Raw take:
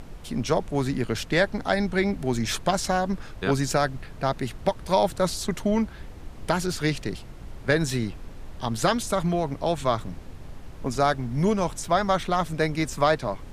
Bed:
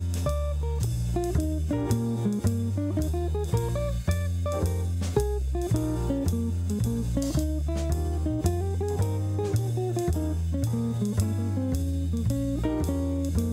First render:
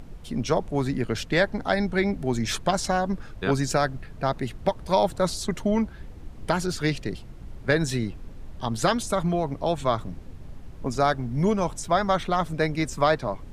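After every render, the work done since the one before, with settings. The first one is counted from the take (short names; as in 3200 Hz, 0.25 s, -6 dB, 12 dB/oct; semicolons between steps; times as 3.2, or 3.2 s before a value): denoiser 6 dB, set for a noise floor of -42 dBFS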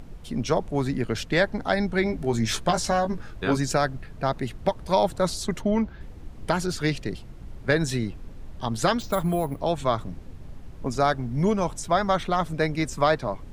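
2.04–3.57 doubler 18 ms -6 dB; 5.61–6.01 bell 9600 Hz -13.5 dB 0.92 oct; 9–9.6 careless resampling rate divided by 4×, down filtered, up hold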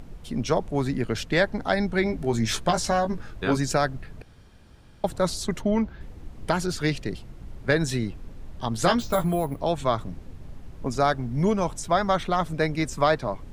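4.22–5.04 room tone; 8.78–9.25 doubler 17 ms -5 dB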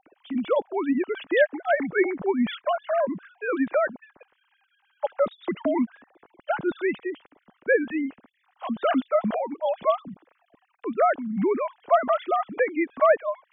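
sine-wave speech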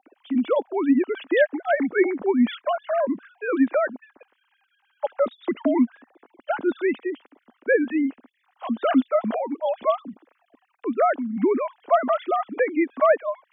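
resonant low shelf 200 Hz -7.5 dB, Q 3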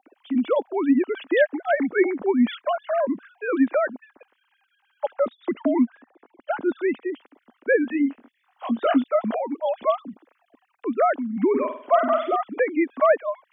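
5.14–7.1 air absorption 210 m; 7.9–9.04 doubler 21 ms -7 dB; 11.49–12.36 flutter echo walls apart 8.4 m, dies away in 0.48 s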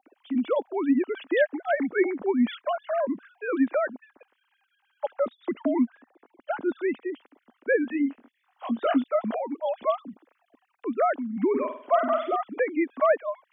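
gain -3.5 dB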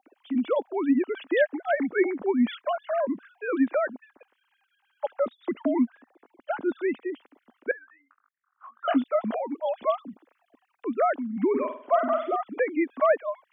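7.71–8.88 Butterworth band-pass 1300 Hz, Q 3.4; 11.74–12.45 LPF 2700 Hz -> 1900 Hz 6 dB/oct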